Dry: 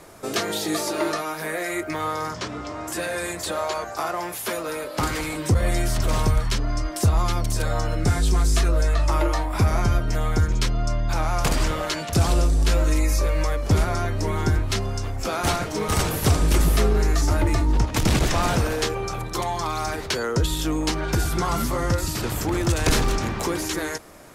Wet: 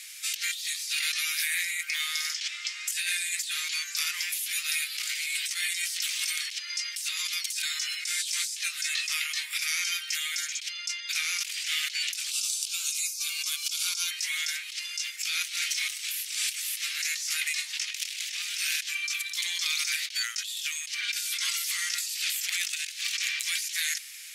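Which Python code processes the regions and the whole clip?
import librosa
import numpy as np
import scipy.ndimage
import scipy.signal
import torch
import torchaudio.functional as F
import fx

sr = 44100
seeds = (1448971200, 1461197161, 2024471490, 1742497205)

y = fx.chain(x, sr, fx.fixed_phaser(hz=780.0, stages=4),
    fx.env_flatten(amount_pct=70), at=(12.31, 14.11))
y = scipy.signal.sosfilt(scipy.signal.butter(6, 2200.0, 'highpass', fs=sr, output='sos'), y)
y = fx.high_shelf(y, sr, hz=9500.0, db=-5.0)
y = fx.over_compress(y, sr, threshold_db=-40.0, ratio=-1.0)
y = y * librosa.db_to_amplitude(8.5)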